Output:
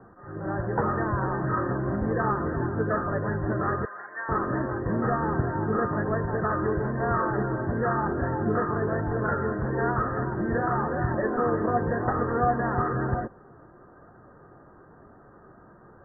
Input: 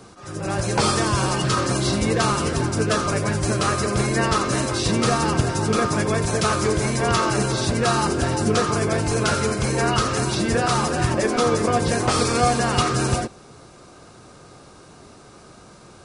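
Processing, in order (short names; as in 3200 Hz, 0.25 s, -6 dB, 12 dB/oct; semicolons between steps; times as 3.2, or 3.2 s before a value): Chebyshev low-pass 1900 Hz, order 10; flange 0.99 Hz, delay 1.2 ms, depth 2.1 ms, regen +81%; 3.85–4.29 HPF 1400 Hz 12 dB/oct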